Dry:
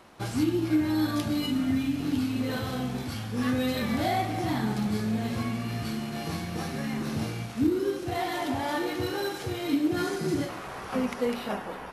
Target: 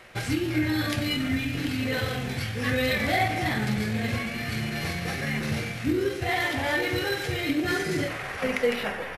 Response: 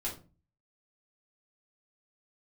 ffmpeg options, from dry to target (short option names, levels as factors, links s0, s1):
-filter_complex "[0:a]equalizer=f=125:t=o:w=1:g=3,equalizer=f=250:t=o:w=1:g=-9,equalizer=f=500:t=o:w=1:g=3,equalizer=f=1000:t=o:w=1:g=-7,equalizer=f=2000:t=o:w=1:g=10,atempo=1.3,asplit=2[s0][s1];[1:a]atrim=start_sample=2205,asetrate=32193,aresample=44100[s2];[s1][s2]afir=irnorm=-1:irlink=0,volume=0.299[s3];[s0][s3]amix=inputs=2:normalize=0,volume=1.19"